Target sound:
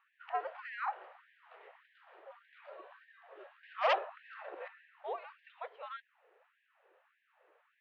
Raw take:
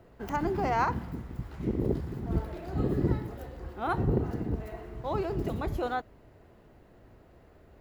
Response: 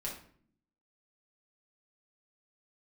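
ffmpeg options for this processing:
-filter_complex "[0:a]asubboost=boost=6.5:cutoff=150,acompressor=threshold=-22dB:ratio=3,highpass=f=240:t=q:w=0.5412,highpass=f=240:t=q:w=1.307,lowpass=f=3.3k:t=q:w=0.5176,lowpass=f=3.3k:t=q:w=0.7071,lowpass=f=3.3k:t=q:w=1.932,afreqshift=-150,asettb=1/sr,asplit=3[a][b][c];[a]atrim=end=3.634[d];[b]atrim=start=3.63:end=4.68,asetpts=PTS-STARTPTS,afade=t=in:d=0.004:c=qsin,afade=t=out:st=1.046:d=0.004:c=qsin,aeval=exprs='0.0944*sin(PI/2*2.51*val(0)/0.0944)':c=same[e];[c]atrim=start=4.676[f];[d][e]acrossfade=d=0.004:c1=hsin:c2=qsin[g];[g][f]acrossfade=d=0.004:c1=qsin:c2=hsin,afftfilt=real='re*gte(b*sr/1024,340*pow(1600/340,0.5+0.5*sin(2*PI*1.7*pts/sr)))':imag='im*gte(b*sr/1024,340*pow(1600/340,0.5+0.5*sin(2*PI*1.7*pts/sr)))':win_size=1024:overlap=0.75,volume=-2.5dB"

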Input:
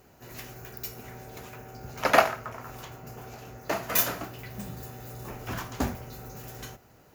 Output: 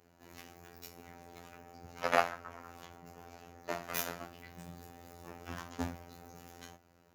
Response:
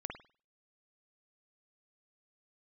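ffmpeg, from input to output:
-af "highshelf=f=12k:g=-10.5,afftfilt=real='hypot(re,im)*cos(PI*b)':imag='0':win_size=2048:overlap=0.75,highpass=60,volume=-5dB"

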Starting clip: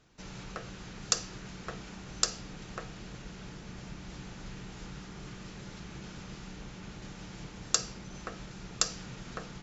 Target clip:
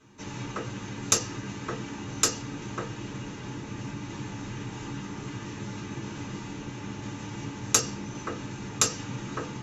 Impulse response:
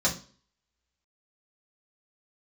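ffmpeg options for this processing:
-filter_complex "[0:a]aeval=exprs='0.596*(cos(1*acos(clip(val(0)/0.596,-1,1)))-cos(1*PI/2))+0.237*(cos(2*acos(clip(val(0)/0.596,-1,1)))-cos(2*PI/2))+0.0335*(cos(4*acos(clip(val(0)/0.596,-1,1)))-cos(4*PI/2))':c=same[a];[1:a]atrim=start_sample=2205,atrim=end_sample=3528,asetrate=70560,aresample=44100[b];[a][b]afir=irnorm=-1:irlink=0"

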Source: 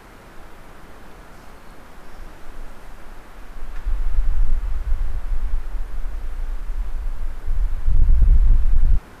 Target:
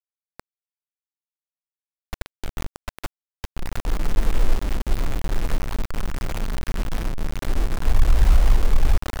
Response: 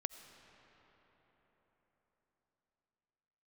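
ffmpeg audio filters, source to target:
-filter_complex "[0:a]asettb=1/sr,asplit=3[a][b][c];[a]atrim=end=6.014[d];[b]atrim=start=6.01:end=7.11,asetpts=PTS-STARTPTS,afade=t=in:d=0.004:c=qsin,afade=t=out:st=1.096:d=0.004:c=qsin,aeval=exprs='val(0)+0.5*0.01*sgn(val(0))':c=same[e];[c]atrim=start=7.106[f];[d][e]acrossfade=d=0.004:c1=hsin:c2=qsin[g];[g][f]acrossfade=d=0.004:c1=qsin:c2=hsin,lowpass=f=1.6k:p=1,asplit=2[h][i];[1:a]atrim=start_sample=2205[j];[i][j]afir=irnorm=-1:irlink=0,volume=-6dB[k];[h][k]amix=inputs=2:normalize=0,acrusher=bits=3:mix=0:aa=0.000001,volume=-4.5dB"

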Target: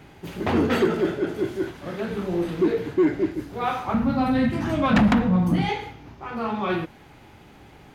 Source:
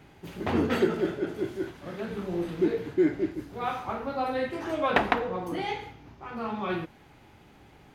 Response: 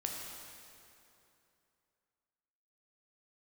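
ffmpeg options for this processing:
-filter_complex "[0:a]asettb=1/sr,asplit=3[a][b][c];[a]atrim=end=3.944[d];[b]atrim=start=3.94:end=5.69,asetpts=PTS-STARTPTS,afade=t=in:d=0.004:c=qsin,afade=t=out:st=1.746:d=0.004:c=qsin,lowshelf=f=290:t=q:w=3:g=10.5[e];[c]atrim=start=5.686[f];[d][e]acrossfade=d=0.004:c1=hsin:c2=qsin[g];[g][f]acrossfade=d=0.004:c1=qsin:c2=hsin,asoftclip=type=tanh:threshold=-18dB,volume=6dB"

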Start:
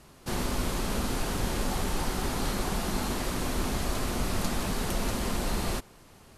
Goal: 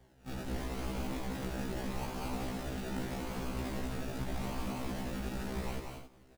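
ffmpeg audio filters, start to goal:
-af "acrusher=samples=33:mix=1:aa=0.000001:lfo=1:lforange=19.8:lforate=0.81,aecho=1:1:186.6|265.3:0.562|0.316,afftfilt=real='re*1.73*eq(mod(b,3),0)':imag='im*1.73*eq(mod(b,3),0)':win_size=2048:overlap=0.75,volume=-6.5dB"

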